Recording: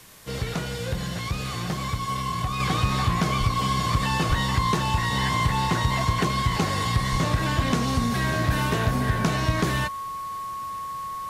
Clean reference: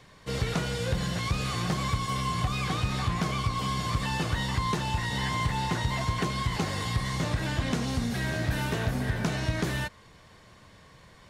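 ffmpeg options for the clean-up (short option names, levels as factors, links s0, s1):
-filter_complex "[0:a]bandreject=f=1100:w=30,asplit=3[s0][s1][s2];[s0]afade=t=out:st=3.39:d=0.02[s3];[s1]highpass=f=140:w=0.5412,highpass=f=140:w=1.3066,afade=t=in:st=3.39:d=0.02,afade=t=out:st=3.51:d=0.02[s4];[s2]afade=t=in:st=3.51:d=0.02[s5];[s3][s4][s5]amix=inputs=3:normalize=0,asplit=3[s6][s7][s8];[s6]afade=t=out:st=4.28:d=0.02[s9];[s7]highpass=f=140:w=0.5412,highpass=f=140:w=1.3066,afade=t=in:st=4.28:d=0.02,afade=t=out:st=4.4:d=0.02[s10];[s8]afade=t=in:st=4.4:d=0.02[s11];[s9][s10][s11]amix=inputs=3:normalize=0,asplit=3[s12][s13][s14];[s12]afade=t=out:st=7.11:d=0.02[s15];[s13]highpass=f=140:w=0.5412,highpass=f=140:w=1.3066,afade=t=in:st=7.11:d=0.02,afade=t=out:st=7.23:d=0.02[s16];[s14]afade=t=in:st=7.23:d=0.02[s17];[s15][s16][s17]amix=inputs=3:normalize=0,afwtdn=0.0035,asetnsamples=n=441:p=0,asendcmd='2.6 volume volume -5dB',volume=1"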